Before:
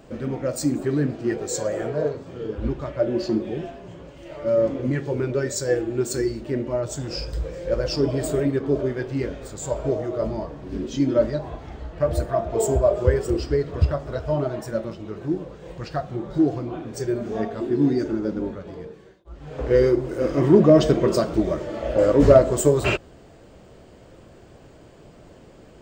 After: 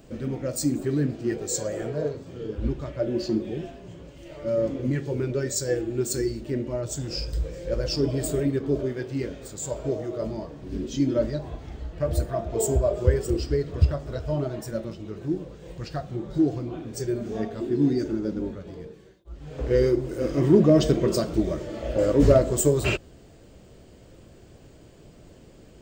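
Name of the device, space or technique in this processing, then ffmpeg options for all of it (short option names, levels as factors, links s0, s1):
smiley-face EQ: -filter_complex "[0:a]bass=f=250:g=-4,treble=f=4000:g=0,asettb=1/sr,asplit=3[s0][s1][s2];[s0]atrim=end=8.844[s3];[s1]atrim=start=8.84:end=10.62,asetpts=PTS-STARTPTS,afade=t=in:d=0.004:c=qsin,afade=t=out:st=1.776:d=0.004:c=qsin,highpass=f=110:p=1[s4];[s2]atrim=start=10.616[s5];[s3][s4]acrossfade=d=0.004:c1=hsin:c2=qsin[s6];[s6][s5]acrossfade=d=0.004:c1=qsin:c2=hsin,lowshelf=f=180:g=5,equalizer=f=960:t=o:w=2.4:g=-7.5,highshelf=f=9800:g=4.5"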